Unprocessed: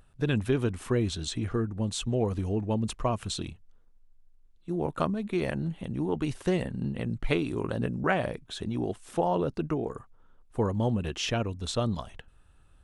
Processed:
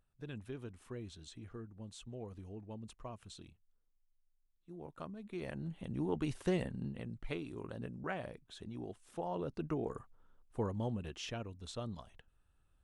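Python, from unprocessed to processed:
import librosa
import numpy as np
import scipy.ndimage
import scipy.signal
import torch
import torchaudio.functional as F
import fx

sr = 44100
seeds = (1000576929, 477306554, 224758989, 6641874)

y = fx.gain(x, sr, db=fx.line((4.98, -19.0), (5.97, -6.5), (6.64, -6.5), (7.16, -14.0), (9.2, -14.0), (9.94, -5.0), (11.43, -14.0)))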